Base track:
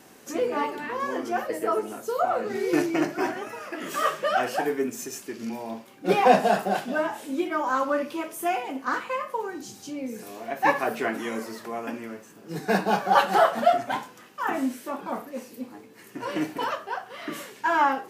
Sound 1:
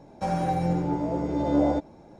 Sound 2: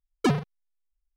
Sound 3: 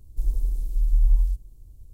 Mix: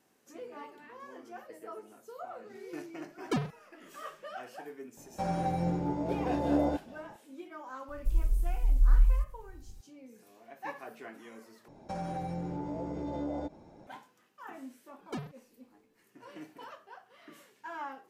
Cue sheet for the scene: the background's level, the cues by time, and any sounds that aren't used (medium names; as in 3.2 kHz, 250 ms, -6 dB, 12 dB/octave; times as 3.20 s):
base track -19 dB
3.07 s: add 2 -8 dB
4.97 s: add 1 -5.5 dB
7.88 s: add 3 -3.5 dB
11.68 s: replace with 1 -4.5 dB + compression 3:1, threshold -30 dBFS
14.88 s: add 2 -16 dB